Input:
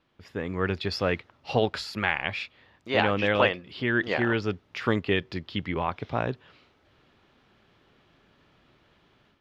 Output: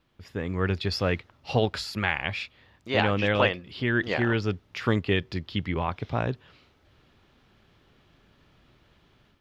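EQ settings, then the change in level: low shelf 130 Hz +10 dB; high shelf 5100 Hz +7 dB; -1.5 dB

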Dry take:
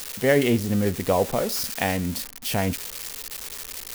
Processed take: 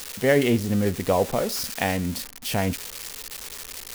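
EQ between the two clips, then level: high shelf 12000 Hz -4 dB; 0.0 dB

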